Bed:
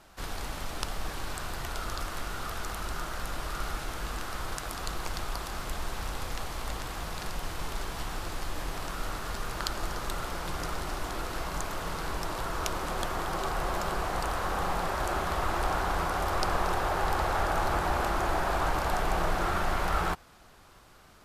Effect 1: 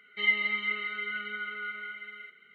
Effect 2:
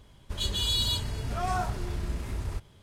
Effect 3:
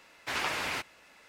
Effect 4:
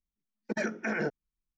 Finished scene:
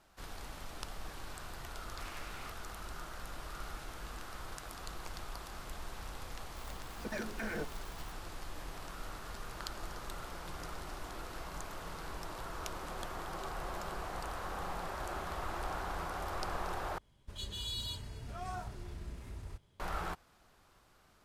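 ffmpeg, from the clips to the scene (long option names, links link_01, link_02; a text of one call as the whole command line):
ffmpeg -i bed.wav -i cue0.wav -i cue1.wav -i cue2.wav -i cue3.wav -filter_complex "[0:a]volume=-10dB[link_01];[4:a]aeval=exprs='val(0)+0.5*0.0158*sgn(val(0))':channel_layout=same[link_02];[link_01]asplit=2[link_03][link_04];[link_03]atrim=end=16.984[link_05];[2:a]atrim=end=2.82,asetpts=PTS-STARTPTS,volume=-12.5dB[link_06];[link_04]atrim=start=19.796[link_07];[3:a]atrim=end=1.28,asetpts=PTS-STARTPTS,volume=-18dB,afade=type=in:duration=0.004:curve=hsin,afade=type=out:start_time=1.276:duration=0.004:curve=hsin,adelay=1700[link_08];[link_02]atrim=end=1.57,asetpts=PTS-STARTPTS,volume=-10dB,afade=type=in:duration=0.004:curve=hsin,afade=type=out:start_time=1.566:duration=0.004:curve=hsin,adelay=6550[link_09];[link_05][link_06]acrossfade=duration=0.004:curve1=hsin:curve2=hsin[link_10];[link_10][link_07]acrossfade=duration=0.004:curve1=hsin:curve2=hsin[link_11];[link_11][link_08][link_09]amix=inputs=3:normalize=0" out.wav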